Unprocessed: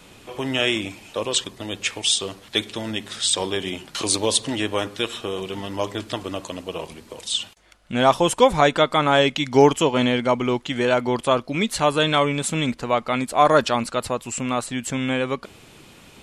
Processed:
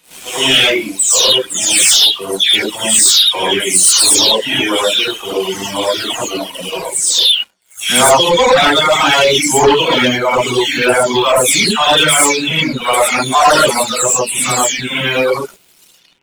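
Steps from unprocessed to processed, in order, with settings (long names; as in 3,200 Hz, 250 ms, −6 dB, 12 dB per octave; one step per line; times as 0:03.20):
every frequency bin delayed by itself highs early, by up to 349 ms
spectral tilt +2.5 dB per octave
reverb whose tail is shaped and stops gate 140 ms rising, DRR −6 dB
leveller curve on the samples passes 3
reverb reduction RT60 1.5 s
level −4 dB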